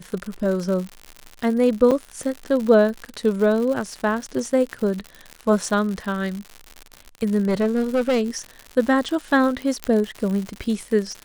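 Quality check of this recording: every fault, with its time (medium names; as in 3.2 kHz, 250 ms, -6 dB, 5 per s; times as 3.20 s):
crackle 120 per s -27 dBFS
1.91–1.92 s: dropout 6.1 ms
7.40–8.22 s: clipped -15.5 dBFS
9.84 s: pop -9 dBFS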